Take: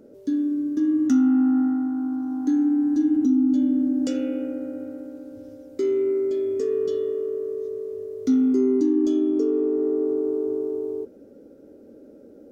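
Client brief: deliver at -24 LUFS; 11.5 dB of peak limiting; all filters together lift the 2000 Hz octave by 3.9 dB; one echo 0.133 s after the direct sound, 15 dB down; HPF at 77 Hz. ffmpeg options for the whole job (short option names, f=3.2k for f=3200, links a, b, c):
-af "highpass=77,equalizer=f=2k:t=o:g=5.5,alimiter=limit=-22.5dB:level=0:latency=1,aecho=1:1:133:0.178,volume=4.5dB"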